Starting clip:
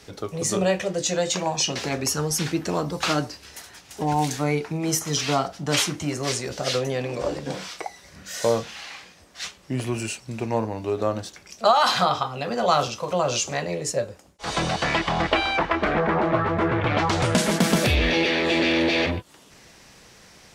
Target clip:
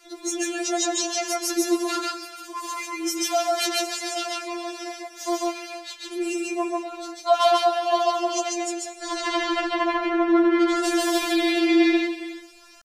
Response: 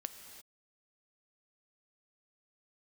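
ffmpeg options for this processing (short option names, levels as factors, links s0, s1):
-filter_complex "[0:a]atempo=1.6,asplit=2[s0][s1];[1:a]atrim=start_sample=2205,adelay=142[s2];[s1][s2]afir=irnorm=-1:irlink=0,volume=1.26[s3];[s0][s3]amix=inputs=2:normalize=0,afftfilt=real='re*4*eq(mod(b,16),0)':imag='im*4*eq(mod(b,16),0)':win_size=2048:overlap=0.75"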